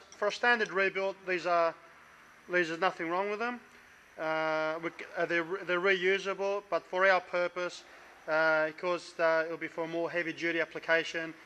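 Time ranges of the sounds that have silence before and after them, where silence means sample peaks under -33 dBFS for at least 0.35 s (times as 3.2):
2.52–3.54
4.2–7.75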